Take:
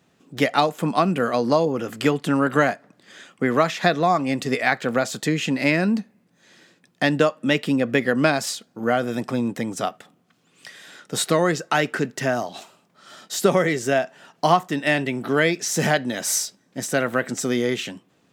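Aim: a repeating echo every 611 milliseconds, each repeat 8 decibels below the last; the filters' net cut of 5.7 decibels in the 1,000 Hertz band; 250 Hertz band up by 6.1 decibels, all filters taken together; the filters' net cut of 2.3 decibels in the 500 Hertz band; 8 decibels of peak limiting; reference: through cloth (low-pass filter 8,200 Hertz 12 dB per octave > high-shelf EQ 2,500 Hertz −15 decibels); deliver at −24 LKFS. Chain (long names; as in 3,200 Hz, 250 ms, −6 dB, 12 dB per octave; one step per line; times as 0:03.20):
parametric band 250 Hz +8.5 dB
parametric band 500 Hz −3 dB
parametric band 1,000 Hz −5 dB
brickwall limiter −11 dBFS
low-pass filter 8,200 Hz 12 dB per octave
high-shelf EQ 2,500 Hz −15 dB
repeating echo 611 ms, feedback 40%, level −8 dB
level −1.5 dB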